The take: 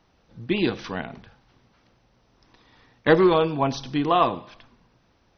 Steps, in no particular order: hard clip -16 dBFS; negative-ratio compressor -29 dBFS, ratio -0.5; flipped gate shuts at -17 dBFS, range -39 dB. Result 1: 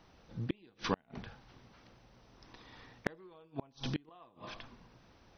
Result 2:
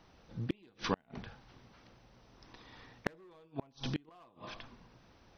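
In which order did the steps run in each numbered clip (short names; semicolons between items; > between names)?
flipped gate > negative-ratio compressor > hard clip; hard clip > flipped gate > negative-ratio compressor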